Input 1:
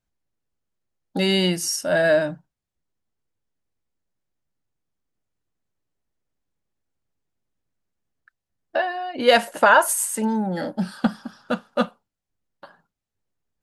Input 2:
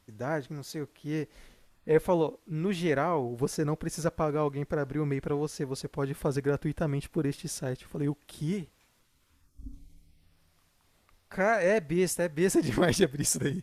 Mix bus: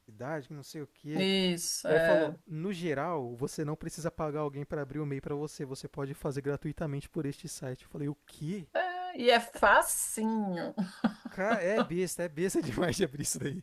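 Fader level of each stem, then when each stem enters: -8.5, -5.5 dB; 0.00, 0.00 s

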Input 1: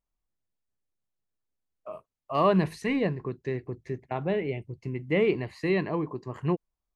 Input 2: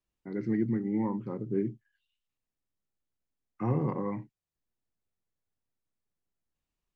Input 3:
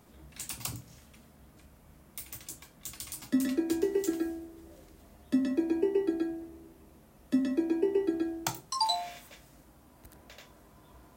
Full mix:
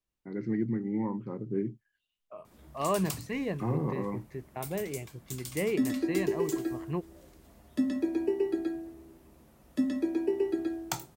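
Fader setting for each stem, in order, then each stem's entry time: -6.5, -1.5, -1.0 dB; 0.45, 0.00, 2.45 s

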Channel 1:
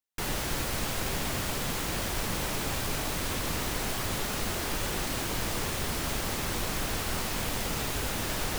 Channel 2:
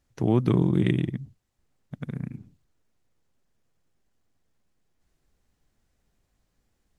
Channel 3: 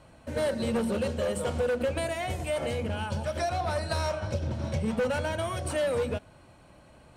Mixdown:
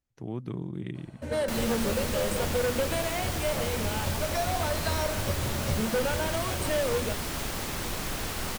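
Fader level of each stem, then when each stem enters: -1.5, -13.5, -0.5 dB; 1.30, 0.00, 0.95 s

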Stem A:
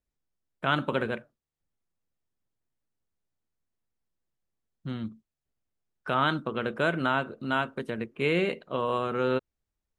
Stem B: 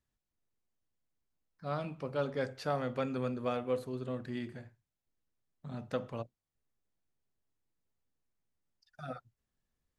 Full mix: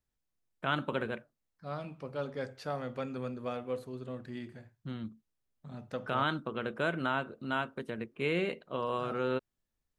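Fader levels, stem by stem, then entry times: -5.5, -3.0 dB; 0.00, 0.00 s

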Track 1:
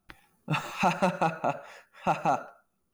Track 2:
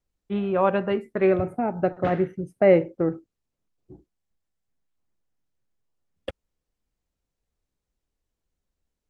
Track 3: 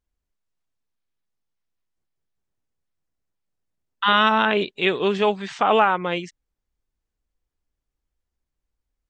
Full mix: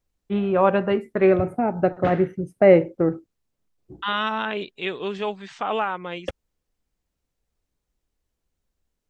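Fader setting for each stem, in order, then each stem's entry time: off, +3.0 dB, -7.5 dB; off, 0.00 s, 0.00 s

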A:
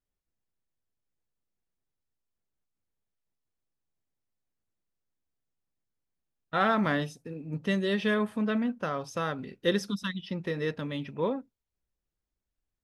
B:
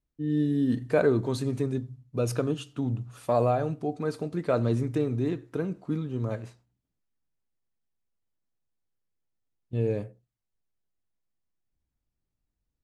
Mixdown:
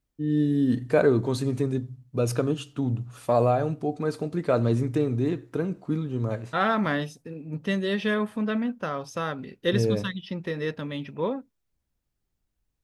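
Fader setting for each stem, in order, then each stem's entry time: +1.5, +2.5 dB; 0.00, 0.00 s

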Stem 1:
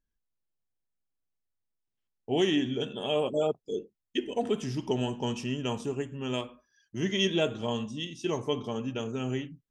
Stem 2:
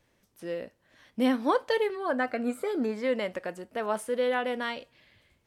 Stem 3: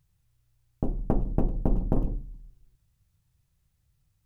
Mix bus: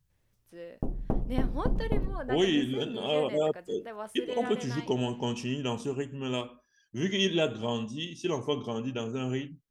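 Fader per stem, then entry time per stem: 0.0, -10.0, -4.0 dB; 0.00, 0.10, 0.00 s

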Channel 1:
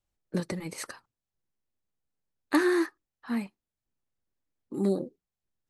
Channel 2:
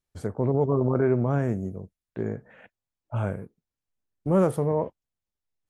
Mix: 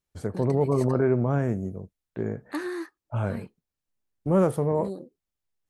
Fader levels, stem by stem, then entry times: -8.0, 0.0 dB; 0.00, 0.00 s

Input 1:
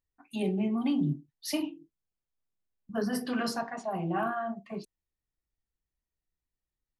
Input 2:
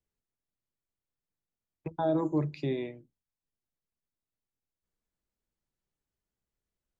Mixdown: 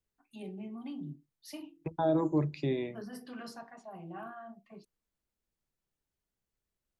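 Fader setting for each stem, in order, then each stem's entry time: -13.5, 0.0 dB; 0.00, 0.00 s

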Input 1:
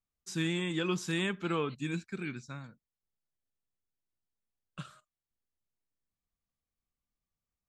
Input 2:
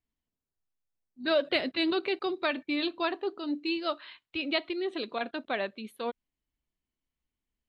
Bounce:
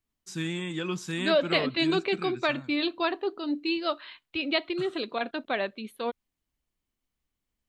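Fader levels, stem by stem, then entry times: 0.0, +2.5 dB; 0.00, 0.00 s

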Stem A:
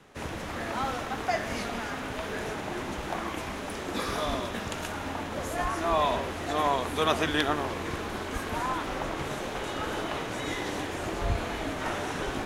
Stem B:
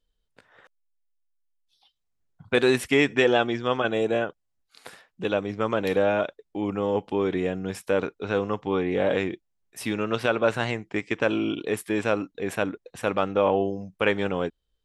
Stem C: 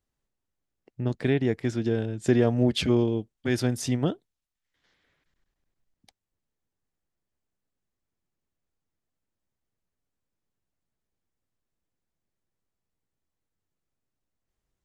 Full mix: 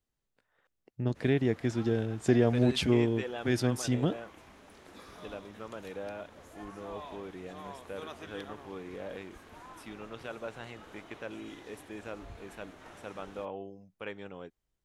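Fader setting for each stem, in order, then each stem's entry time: -19.5, -18.0, -3.0 dB; 1.00, 0.00, 0.00 s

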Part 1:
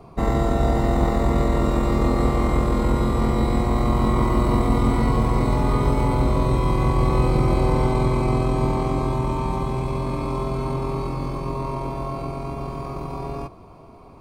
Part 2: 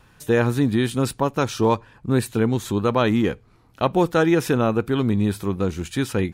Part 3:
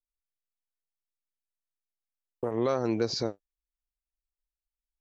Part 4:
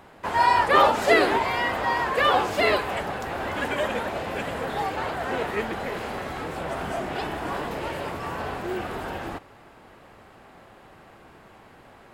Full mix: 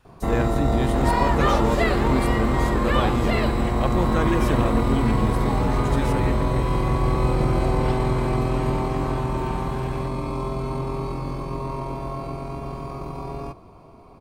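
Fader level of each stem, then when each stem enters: -2.0 dB, -7.0 dB, off, -5.5 dB; 0.05 s, 0.00 s, off, 0.70 s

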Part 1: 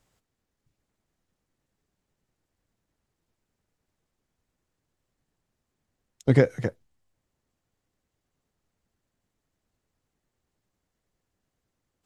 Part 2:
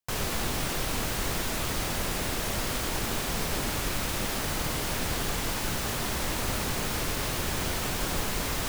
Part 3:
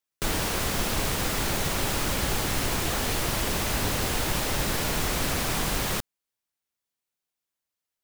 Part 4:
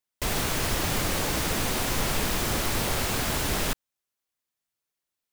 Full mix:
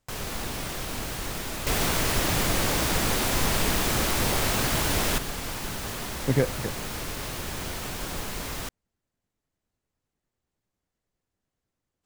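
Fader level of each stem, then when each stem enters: -4.5, -3.5, -14.5, +1.5 dB; 0.00, 0.00, 0.05, 1.45 s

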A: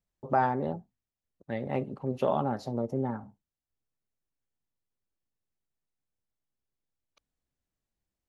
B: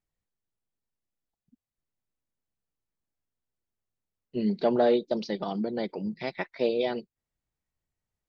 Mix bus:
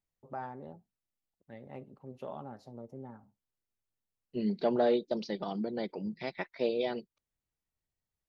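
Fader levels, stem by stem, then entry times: -15.0, -4.5 dB; 0.00, 0.00 s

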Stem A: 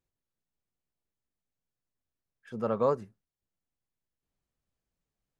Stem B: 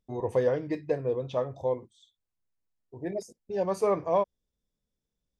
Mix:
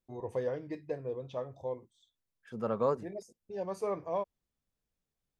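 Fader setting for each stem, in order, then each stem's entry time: -3.0, -8.5 dB; 0.00, 0.00 s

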